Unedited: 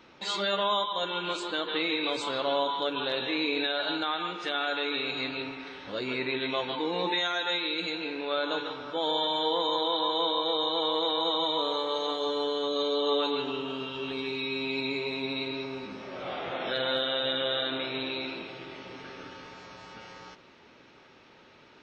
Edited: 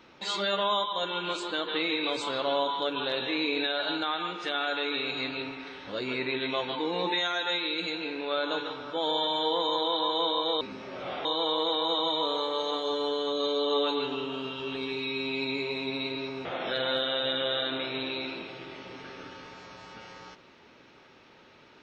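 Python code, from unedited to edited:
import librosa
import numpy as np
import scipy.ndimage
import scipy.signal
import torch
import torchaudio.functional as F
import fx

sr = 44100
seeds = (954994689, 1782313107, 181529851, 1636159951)

y = fx.edit(x, sr, fx.move(start_s=15.81, length_s=0.64, to_s=10.61), tone=tone)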